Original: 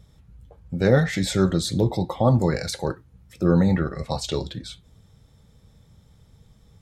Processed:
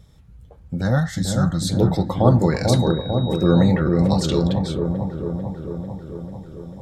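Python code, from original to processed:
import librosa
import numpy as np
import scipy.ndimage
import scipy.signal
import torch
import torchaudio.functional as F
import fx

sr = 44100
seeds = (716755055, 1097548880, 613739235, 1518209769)

y = fx.fixed_phaser(x, sr, hz=1000.0, stages=4, at=(0.81, 1.67))
y = fx.dmg_tone(y, sr, hz=3800.0, level_db=-38.0, at=(2.67, 3.69), fade=0.02)
y = fx.echo_wet_lowpass(y, sr, ms=445, feedback_pct=68, hz=840.0, wet_db=-3.0)
y = y * librosa.db_to_amplitude(2.5)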